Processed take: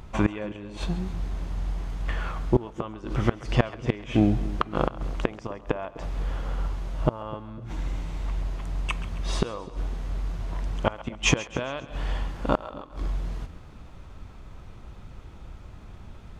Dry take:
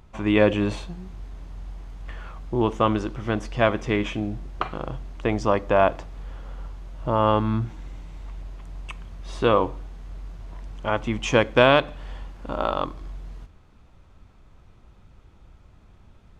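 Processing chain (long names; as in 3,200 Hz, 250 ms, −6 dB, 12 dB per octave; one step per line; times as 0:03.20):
gate with flip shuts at −16 dBFS, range −25 dB
echo with a time of its own for lows and highs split 550 Hz, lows 253 ms, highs 135 ms, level −16 dB
level +8 dB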